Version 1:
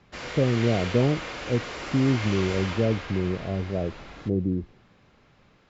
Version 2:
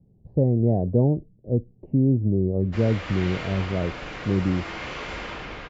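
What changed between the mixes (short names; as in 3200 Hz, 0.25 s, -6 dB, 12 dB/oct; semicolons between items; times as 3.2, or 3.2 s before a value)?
background: entry +2.60 s; master: add tone controls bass +4 dB, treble -8 dB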